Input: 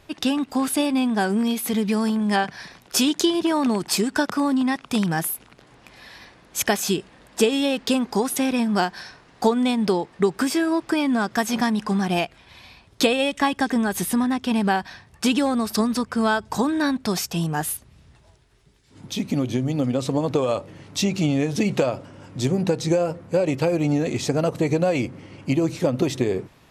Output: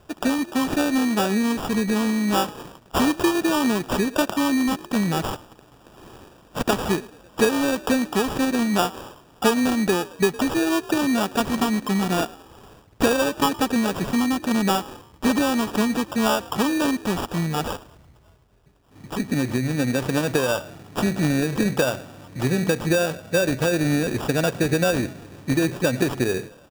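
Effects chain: frequency-shifting echo 0.11 s, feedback 46%, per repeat +52 Hz, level -20.5 dB; sample-and-hold 21×

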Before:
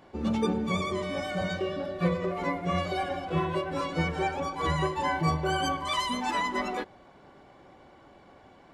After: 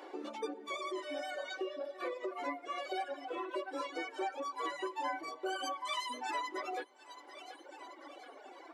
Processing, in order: flange 0.26 Hz, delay 2.1 ms, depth 7.1 ms, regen -48%; on a send: thinning echo 0.73 s, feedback 43%, high-pass 460 Hz, level -19 dB; on the sum: reverb removal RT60 2 s; compressor 2:1, threshold -57 dBFS, peak gain reduction 16 dB; elliptic high-pass 290 Hz, stop band 40 dB; gain +11 dB

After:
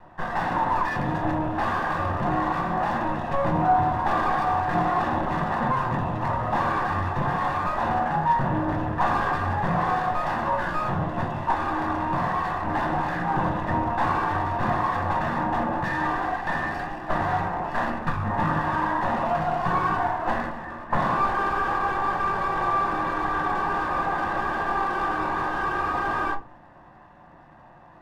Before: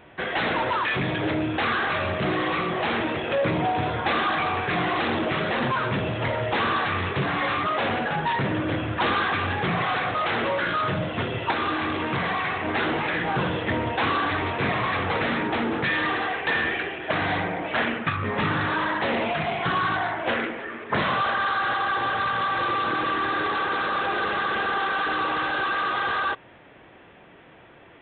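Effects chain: minimum comb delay 1.1 ms; resonant high shelf 1800 Hz -12 dB, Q 1.5; shoebox room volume 120 m³, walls furnished, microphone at 0.88 m

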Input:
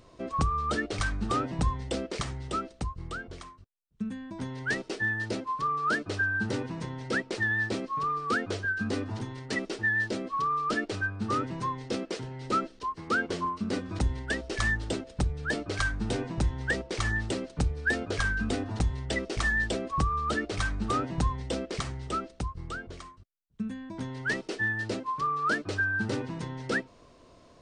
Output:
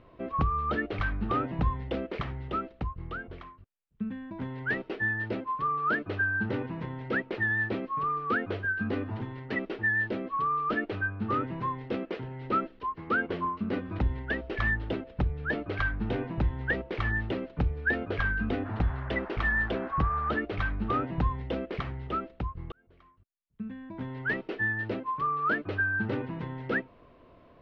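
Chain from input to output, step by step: LPF 2900 Hz 24 dB/oct; 18.64–20.38 band noise 600–1700 Hz -45 dBFS; 22.72–24.17 fade in

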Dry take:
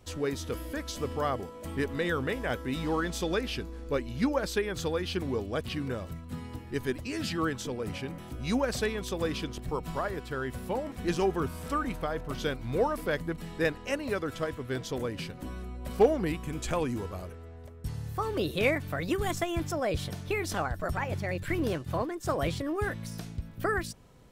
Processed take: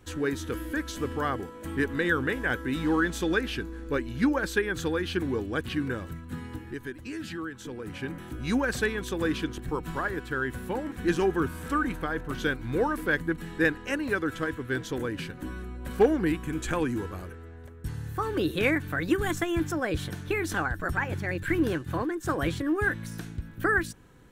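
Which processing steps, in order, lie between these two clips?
thirty-one-band EQ 315 Hz +7 dB, 630 Hz -8 dB, 1600 Hz +10 dB, 5000 Hz -6 dB; 6.57–8.02 compressor 4:1, threshold -36 dBFS, peak gain reduction 13 dB; gain +1 dB

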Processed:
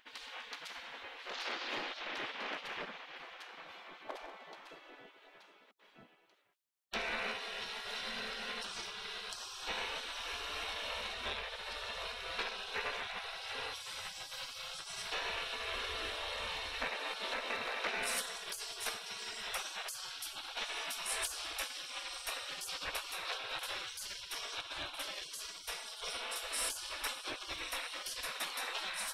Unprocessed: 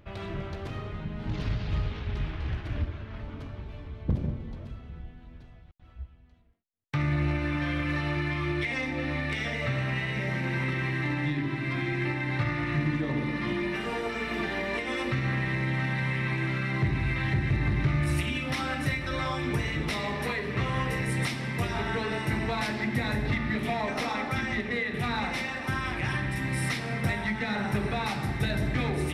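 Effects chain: spectral gate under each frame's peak -25 dB weak; gain +5.5 dB

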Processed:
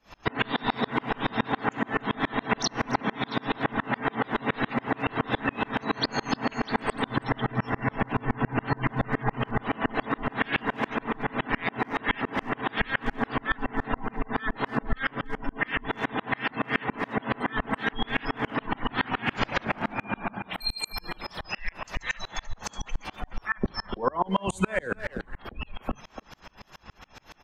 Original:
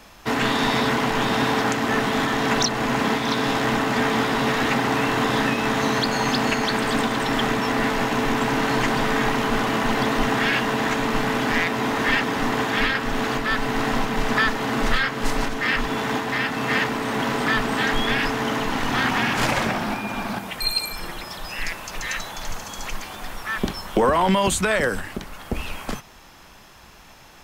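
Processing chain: 7.07–9.62 bell 120 Hz +11 dB 0.46 oct; spectral gate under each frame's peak -20 dB strong; speakerphone echo 0.29 s, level -11 dB; compressor 2:1, threshold -28 dBFS, peak gain reduction 7.5 dB; plate-style reverb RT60 1.8 s, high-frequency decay 0.8×, DRR 19 dB; dB-ramp tremolo swelling 7.1 Hz, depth 34 dB; gain +7 dB

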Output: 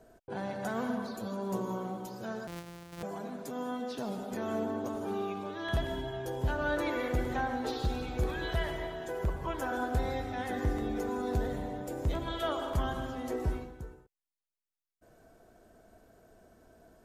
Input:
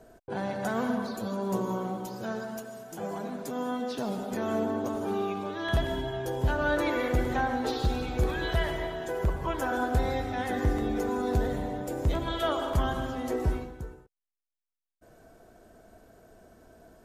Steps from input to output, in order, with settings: 2.47–3.03 sample sorter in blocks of 256 samples; gain -4.5 dB

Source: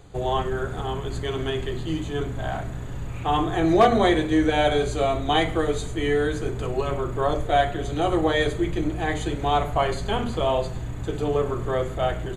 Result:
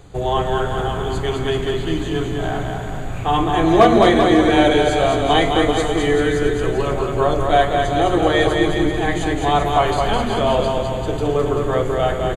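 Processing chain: bouncing-ball echo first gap 0.21 s, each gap 0.85×, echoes 5; gain +4.5 dB

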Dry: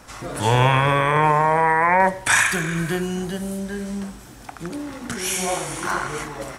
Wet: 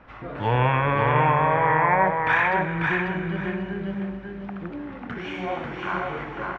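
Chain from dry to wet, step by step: LPF 2700 Hz 24 dB/oct; on a send: feedback echo 0.543 s, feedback 26%, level -3.5 dB; on the sum: gain -4 dB

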